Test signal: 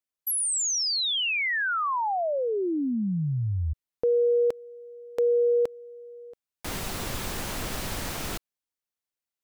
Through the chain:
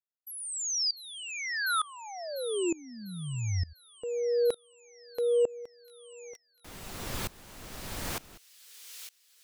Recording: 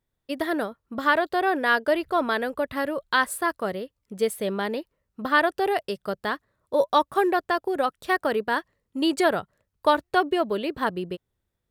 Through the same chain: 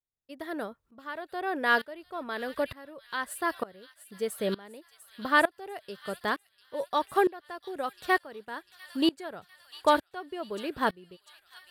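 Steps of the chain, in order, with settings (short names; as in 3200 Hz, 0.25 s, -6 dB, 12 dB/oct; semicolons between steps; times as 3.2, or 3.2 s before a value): on a send: thin delay 0.697 s, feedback 74%, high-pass 3300 Hz, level -7 dB; on the sum: dB-ramp tremolo swelling 1.1 Hz, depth 23 dB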